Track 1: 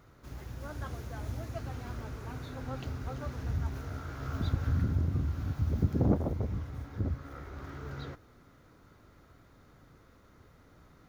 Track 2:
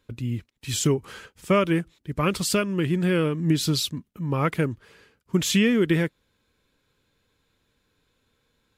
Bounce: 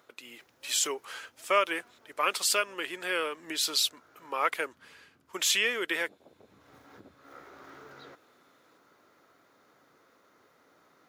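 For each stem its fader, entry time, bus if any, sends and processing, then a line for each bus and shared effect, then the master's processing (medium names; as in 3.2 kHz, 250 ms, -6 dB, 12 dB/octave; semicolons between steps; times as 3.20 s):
+0.5 dB, 0.00 s, no send, compression 5:1, threshold -40 dBFS, peak gain reduction 17.5 dB; auto duck -11 dB, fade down 0.20 s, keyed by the second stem
+0.5 dB, 0.00 s, no send, high-pass 670 Hz 12 dB/octave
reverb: none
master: high-pass 380 Hz 12 dB/octave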